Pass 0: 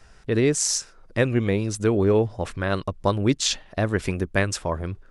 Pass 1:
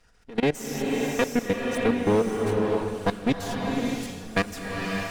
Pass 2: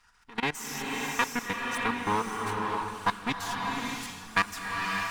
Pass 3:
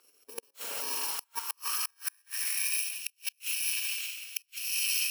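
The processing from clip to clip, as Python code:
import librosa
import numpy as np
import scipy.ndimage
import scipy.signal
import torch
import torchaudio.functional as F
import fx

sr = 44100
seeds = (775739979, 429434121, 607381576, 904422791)

y1 = fx.lower_of_two(x, sr, delay_ms=4.2)
y1 = fx.level_steps(y1, sr, step_db=20)
y1 = fx.rev_bloom(y1, sr, seeds[0], attack_ms=600, drr_db=0.0)
y2 = fx.low_shelf_res(y1, sr, hz=750.0, db=-9.0, q=3.0)
y3 = fx.bit_reversed(y2, sr, seeds[1], block=64)
y3 = fx.gate_flip(y3, sr, shuts_db=-19.0, range_db=-37)
y3 = fx.filter_sweep_highpass(y3, sr, from_hz=410.0, to_hz=2600.0, start_s=0.18, end_s=2.85, q=4.0)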